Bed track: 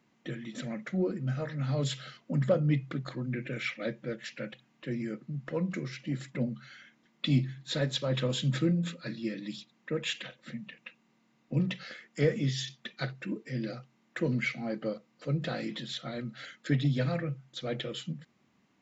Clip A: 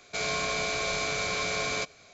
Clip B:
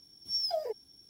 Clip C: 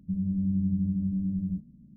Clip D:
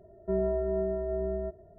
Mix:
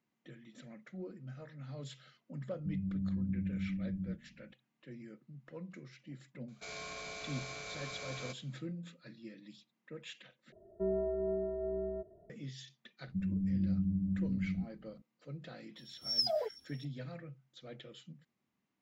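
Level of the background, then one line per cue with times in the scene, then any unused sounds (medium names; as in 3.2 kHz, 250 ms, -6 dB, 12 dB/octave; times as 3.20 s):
bed track -15 dB
2.57 s: add C -8.5 dB
6.48 s: add A -15 dB
10.52 s: replace with D -12.5 dB + peaking EQ 350 Hz +8.5 dB 2.8 oct
13.06 s: add C -5.5 dB
15.76 s: add B -5 dB + sweeping bell 3.2 Hz 540–7600 Hz +13 dB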